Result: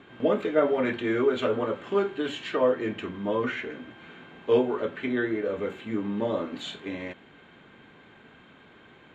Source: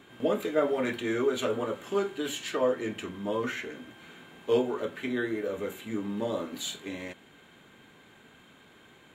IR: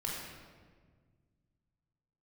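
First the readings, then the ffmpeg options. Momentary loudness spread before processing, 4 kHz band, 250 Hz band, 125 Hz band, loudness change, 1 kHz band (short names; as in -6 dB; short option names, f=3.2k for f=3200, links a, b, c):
14 LU, -0.5 dB, +3.5 dB, +3.5 dB, +3.5 dB, +3.5 dB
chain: -af "lowpass=3k,volume=3.5dB"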